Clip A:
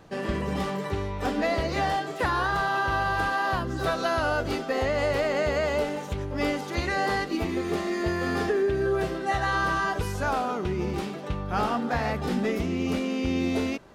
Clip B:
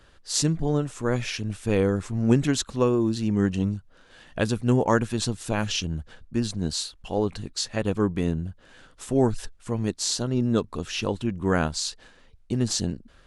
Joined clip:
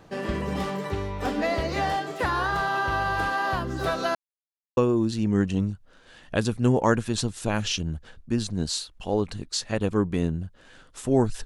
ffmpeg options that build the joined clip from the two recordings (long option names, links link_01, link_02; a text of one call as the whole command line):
ffmpeg -i cue0.wav -i cue1.wav -filter_complex "[0:a]apad=whole_dur=11.45,atrim=end=11.45,asplit=2[link_01][link_02];[link_01]atrim=end=4.15,asetpts=PTS-STARTPTS,afade=type=out:start_time=4.146:duration=0.004:curve=hsin[link_03];[link_02]atrim=start=4.15:end=4.77,asetpts=PTS-STARTPTS,volume=0[link_04];[1:a]atrim=start=2.81:end=9.49,asetpts=PTS-STARTPTS,afade=type=in:duration=0.004:curve=hsin[link_05];[link_03][link_04][link_05]concat=n=3:v=0:a=1" out.wav